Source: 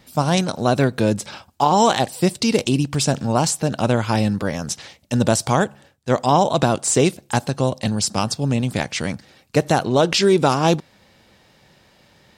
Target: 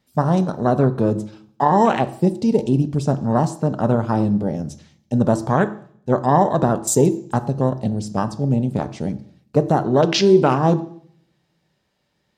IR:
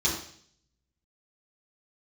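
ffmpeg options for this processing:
-filter_complex "[0:a]afwtdn=0.0631,asplit=2[a][b];[1:a]atrim=start_sample=2205[c];[b][c]afir=irnorm=-1:irlink=0,volume=-20.5dB[d];[a][d]amix=inputs=2:normalize=0"

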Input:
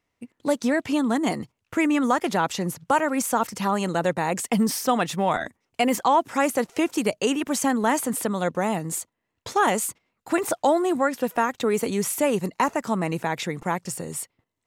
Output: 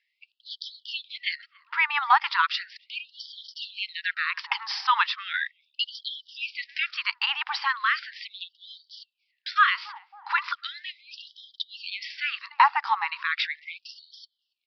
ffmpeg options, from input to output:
-filter_complex "[0:a]asplit=2[a][b];[b]adelay=283,lowpass=f=1k:p=1,volume=-21.5dB,asplit=2[c][d];[d]adelay=283,lowpass=f=1k:p=1,volume=0.49,asplit=2[e][f];[f]adelay=283,lowpass=f=1k:p=1,volume=0.49[g];[a][c][e][g]amix=inputs=4:normalize=0,aresample=11025,aresample=44100,afftfilt=real='re*gte(b*sr/1024,750*pow(3100/750,0.5+0.5*sin(2*PI*0.37*pts/sr)))':imag='im*gte(b*sr/1024,750*pow(3100/750,0.5+0.5*sin(2*PI*0.37*pts/sr)))':win_size=1024:overlap=0.75,volume=6dB"

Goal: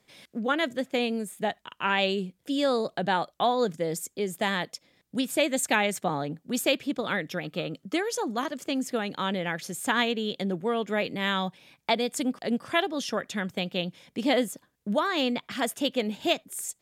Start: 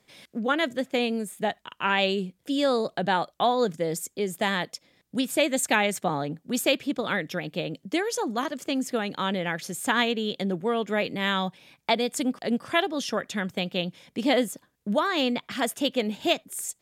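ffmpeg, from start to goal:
-filter_complex "[0:a]asettb=1/sr,asplit=3[a][b][c];[a]atrim=end=7.444[d];[b]atrim=start=7.44:end=7.97,asetpts=PTS-STARTPTS,afade=t=in:d=0.004:c=qsin,afade=t=out:st=0.526:d=0.004:c=qsin,equalizer=f=1.3k:w=5.9:g=13.5[e];[c]atrim=start=7.966[f];[d][e]acrossfade=d=0.004:c1=hsin:c2=qsin[g];[g][f]acrossfade=d=0.004:c1=qsin:c2=hsin,volume=-1.5dB"

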